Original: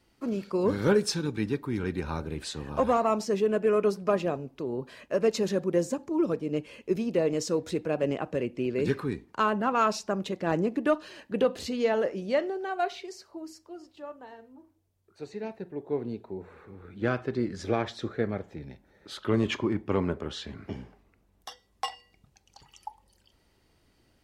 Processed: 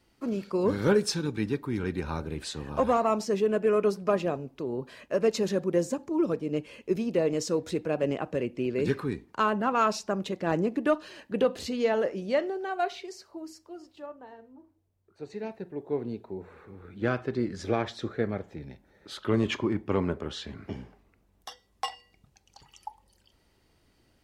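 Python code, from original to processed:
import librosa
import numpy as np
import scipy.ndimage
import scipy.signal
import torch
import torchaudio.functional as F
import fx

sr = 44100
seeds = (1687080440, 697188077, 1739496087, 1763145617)

y = fx.high_shelf(x, sr, hz=2100.0, db=-8.0, at=(14.06, 15.3))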